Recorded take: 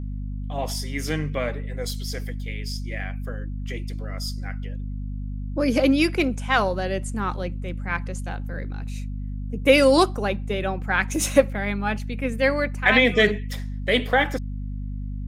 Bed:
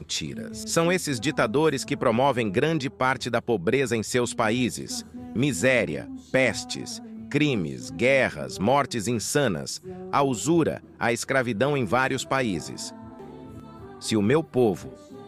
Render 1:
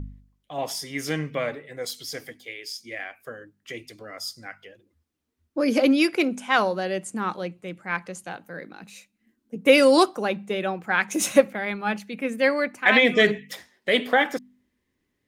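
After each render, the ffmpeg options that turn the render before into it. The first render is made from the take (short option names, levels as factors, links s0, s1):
-af "bandreject=f=50:t=h:w=4,bandreject=f=100:t=h:w=4,bandreject=f=150:t=h:w=4,bandreject=f=200:t=h:w=4,bandreject=f=250:t=h:w=4"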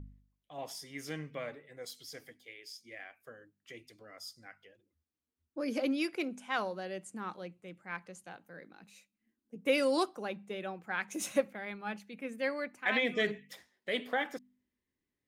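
-af "volume=0.224"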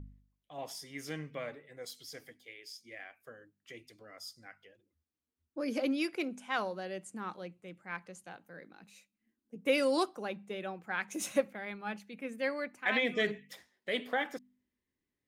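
-af anull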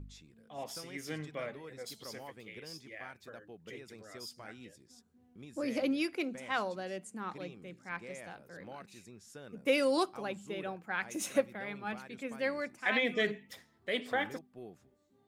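-filter_complex "[1:a]volume=0.0422[s0];[0:a][s0]amix=inputs=2:normalize=0"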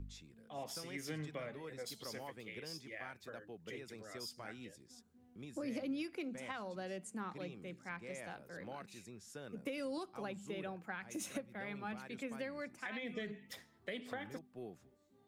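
-filter_complex "[0:a]alimiter=limit=0.0708:level=0:latency=1:release=201,acrossover=split=210[s0][s1];[s1]acompressor=threshold=0.00891:ratio=10[s2];[s0][s2]amix=inputs=2:normalize=0"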